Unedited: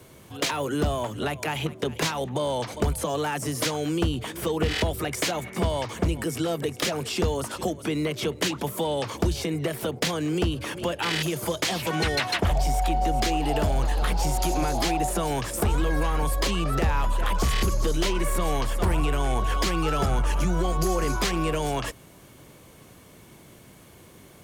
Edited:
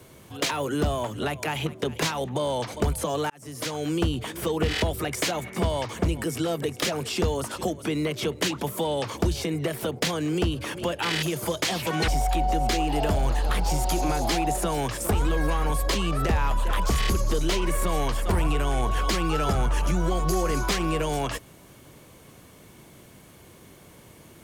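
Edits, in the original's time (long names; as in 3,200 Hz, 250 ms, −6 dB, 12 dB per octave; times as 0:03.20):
0:03.30–0:03.92: fade in
0:12.08–0:12.61: remove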